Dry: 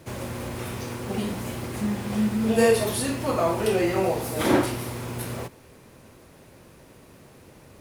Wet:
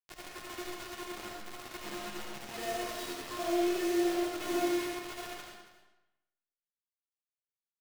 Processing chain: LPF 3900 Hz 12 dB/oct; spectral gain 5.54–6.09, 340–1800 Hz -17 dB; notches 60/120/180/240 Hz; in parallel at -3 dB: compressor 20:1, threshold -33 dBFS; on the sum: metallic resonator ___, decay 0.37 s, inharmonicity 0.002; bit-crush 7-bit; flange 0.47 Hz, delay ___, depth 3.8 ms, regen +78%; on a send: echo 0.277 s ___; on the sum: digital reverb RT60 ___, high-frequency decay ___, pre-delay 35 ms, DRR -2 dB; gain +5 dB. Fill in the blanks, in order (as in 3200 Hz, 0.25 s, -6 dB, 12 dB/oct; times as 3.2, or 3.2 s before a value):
350 Hz, 6.1 ms, -15 dB, 0.96 s, 0.85×